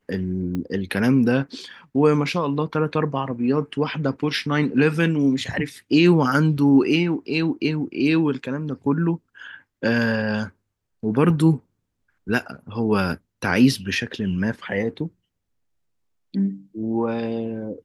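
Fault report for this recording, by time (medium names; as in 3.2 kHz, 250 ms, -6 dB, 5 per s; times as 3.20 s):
0.55 s: pop -17 dBFS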